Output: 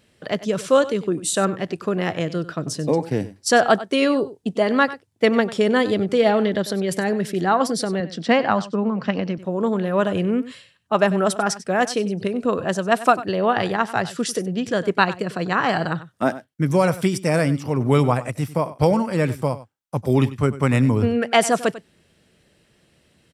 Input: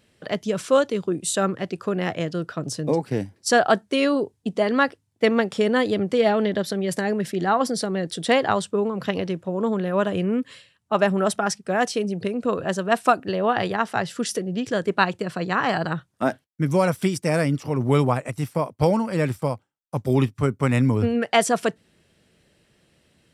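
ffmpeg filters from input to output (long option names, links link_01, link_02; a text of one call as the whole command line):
ffmpeg -i in.wav -filter_complex "[0:a]asettb=1/sr,asplit=3[link_01][link_02][link_03];[link_01]atrim=end=8.004[link_04];[link_02]atrim=start=8:end=9.38,asetpts=PTS-STARTPTS,afade=type=in:duration=0.004:curve=qsin,afade=type=out:start_time=1.376:duration=0.004:curve=qsin,highpass=140,equalizer=frequency=220:width_type=q:width=4:gain=6,equalizer=frequency=400:width_type=q:width=4:gain=-7,equalizer=frequency=3600:width_type=q:width=4:gain=-9,lowpass=frequency=5500:width=0.5412,lowpass=frequency=5500:width=1.3066[link_05];[link_03]atrim=start=9.376[link_06];[link_04][link_05]acrossfade=duration=0.004:curve1=hsin:curve2=qsin[link_07];[link_07][link_06]acrossfade=duration=0.004:curve1=qsin:curve2=hsin,asplit=2[link_08][link_09];[link_09]aecho=0:1:96:0.158[link_10];[link_08][link_10]amix=inputs=2:normalize=0,volume=2dB" out.wav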